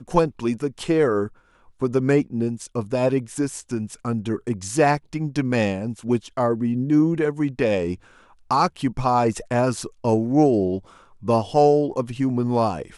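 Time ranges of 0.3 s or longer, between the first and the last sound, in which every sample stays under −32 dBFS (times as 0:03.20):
0:01.27–0:01.82
0:07.95–0:08.51
0:10.79–0:11.23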